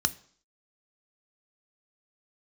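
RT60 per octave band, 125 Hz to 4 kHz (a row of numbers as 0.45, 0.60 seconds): 0.45, 0.55, 0.55, 0.55, 0.50, 0.60 seconds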